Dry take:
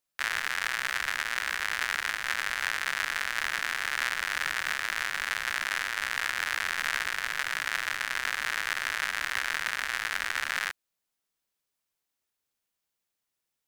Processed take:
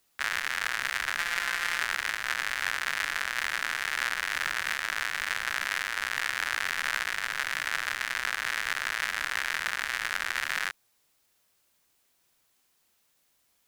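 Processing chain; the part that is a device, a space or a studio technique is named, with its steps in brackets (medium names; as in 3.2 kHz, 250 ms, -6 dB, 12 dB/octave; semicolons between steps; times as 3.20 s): plain cassette with noise reduction switched in (tape noise reduction on one side only decoder only; wow and flutter; white noise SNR 38 dB); 1.17–1.81 s: comb 5.8 ms, depth 64%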